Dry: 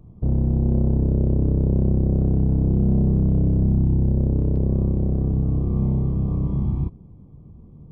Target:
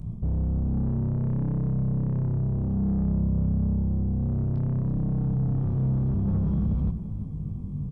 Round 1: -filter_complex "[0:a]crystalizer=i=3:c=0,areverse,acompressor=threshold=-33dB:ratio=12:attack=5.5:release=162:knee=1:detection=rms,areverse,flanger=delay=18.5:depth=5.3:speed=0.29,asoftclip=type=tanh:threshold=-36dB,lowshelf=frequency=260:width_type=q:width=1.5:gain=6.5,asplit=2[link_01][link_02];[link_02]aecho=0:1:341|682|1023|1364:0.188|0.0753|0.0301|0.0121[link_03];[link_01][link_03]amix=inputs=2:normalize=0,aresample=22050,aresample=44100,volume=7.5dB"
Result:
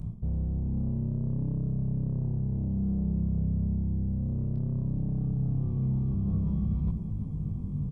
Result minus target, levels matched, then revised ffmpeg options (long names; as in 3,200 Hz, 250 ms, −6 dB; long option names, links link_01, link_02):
downward compressor: peak gain reduction +8.5 dB
-filter_complex "[0:a]crystalizer=i=3:c=0,areverse,acompressor=threshold=-24dB:ratio=12:attack=5.5:release=162:knee=1:detection=rms,areverse,flanger=delay=18.5:depth=5.3:speed=0.29,asoftclip=type=tanh:threshold=-36dB,lowshelf=frequency=260:width_type=q:width=1.5:gain=6.5,asplit=2[link_01][link_02];[link_02]aecho=0:1:341|682|1023|1364:0.188|0.0753|0.0301|0.0121[link_03];[link_01][link_03]amix=inputs=2:normalize=0,aresample=22050,aresample=44100,volume=7.5dB"